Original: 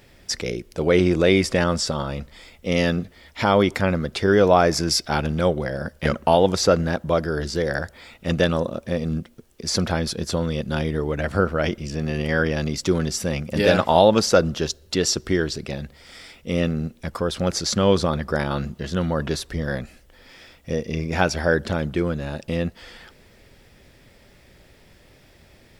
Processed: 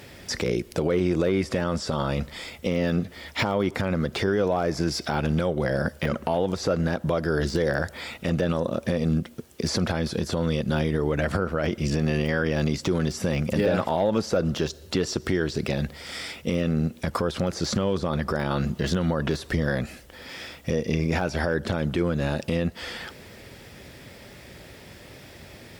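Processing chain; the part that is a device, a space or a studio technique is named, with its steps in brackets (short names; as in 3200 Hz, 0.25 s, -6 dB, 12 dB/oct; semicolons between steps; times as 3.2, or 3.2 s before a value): podcast mastering chain (HPF 69 Hz 12 dB/oct; de-esser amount 90%; compressor 4:1, threshold -27 dBFS, peak gain reduction 13 dB; limiter -21 dBFS, peak gain reduction 8 dB; gain +8.5 dB; MP3 96 kbps 48000 Hz)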